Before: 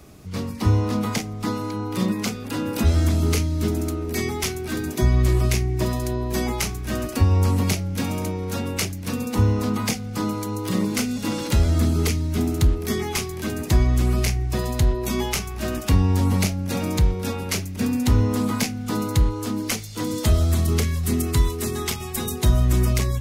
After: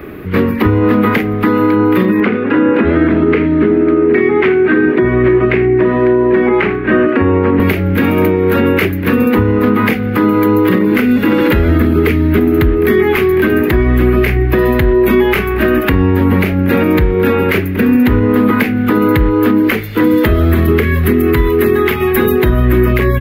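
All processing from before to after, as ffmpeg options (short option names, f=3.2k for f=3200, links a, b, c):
-filter_complex "[0:a]asettb=1/sr,asplit=3[a][b][c];[a]atrim=end=2.204[d];[b]atrim=start=2.2:end=7.6,asetpts=PTS-STARTPTS,afade=t=in:d=0.004:c=qsin,afade=t=out:st=5.396:d=0.004:c=qsin,highpass=140,lowpass=2.4k,aecho=1:1:79:0.168,atrim=end_sample=238140[e];[c]atrim=start=7.596[f];[d][e]acrossfade=d=0.004:c1=hsin:c2=qsin[g];[g][f]acrossfade=d=0.004:c1=qsin:c2=hsin,firequalizer=gain_entry='entry(130,0);entry(250,7);entry(370,13);entry(690,1);entry(1700,13);entry(5600,-22);entry(8400,-22);entry(13000,2)':delay=0.05:min_phase=1,acompressor=threshold=-18dB:ratio=6,alimiter=level_in=13dB:limit=-1dB:release=50:level=0:latency=1,volume=-1dB"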